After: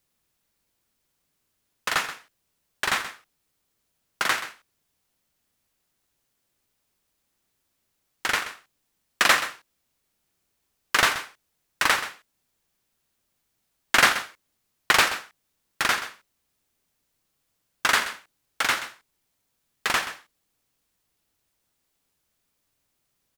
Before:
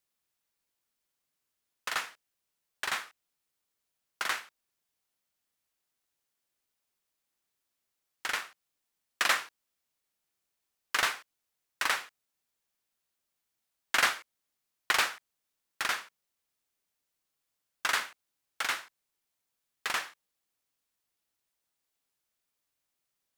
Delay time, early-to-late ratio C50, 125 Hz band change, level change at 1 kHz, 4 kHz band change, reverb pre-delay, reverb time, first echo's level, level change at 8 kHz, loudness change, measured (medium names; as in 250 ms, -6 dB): 129 ms, no reverb, no reading, +8.5 dB, +8.0 dB, no reverb, no reverb, -13.0 dB, +7.5 dB, +7.5 dB